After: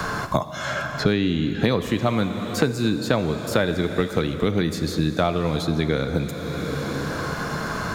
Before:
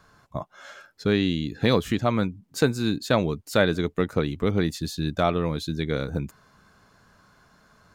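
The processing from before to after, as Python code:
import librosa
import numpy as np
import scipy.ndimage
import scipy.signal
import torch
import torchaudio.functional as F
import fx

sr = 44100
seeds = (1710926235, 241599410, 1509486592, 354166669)

y = fx.rev_plate(x, sr, seeds[0], rt60_s=2.9, hf_ratio=0.95, predelay_ms=0, drr_db=9.5)
y = fx.band_squash(y, sr, depth_pct=100)
y = y * librosa.db_to_amplitude(1.5)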